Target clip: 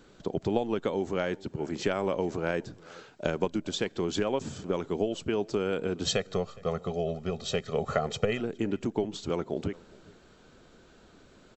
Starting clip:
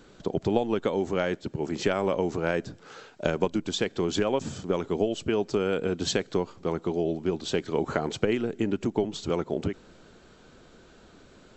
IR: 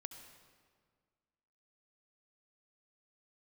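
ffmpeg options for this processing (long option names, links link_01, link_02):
-filter_complex "[0:a]asettb=1/sr,asplit=3[link_01][link_02][link_03];[link_01]atrim=end=6.054[link_04];[link_02]atrim=start=6.05:end=8.4,asetpts=PTS-STARTPTS,afade=type=in:duration=0.004:curve=qsin,afade=type=out:start_time=2.346:duration=0.004:curve=qsin,aecho=1:1:1.6:0.89,atrim=end_sample=103635[link_05];[link_03]atrim=start=8.396[link_06];[link_04][link_05]acrossfade=duration=0.004:curve1=hsin:curve2=qsin[link_07];[link_07][link_06]acrossfade=duration=0.004:curve1=qsin:curve2=hsin,asplit=2[link_08][link_09];[link_09]adelay=414,volume=-23dB,highshelf=frequency=4000:gain=-9.32[link_10];[link_08][link_10]amix=inputs=2:normalize=0,volume=-3dB"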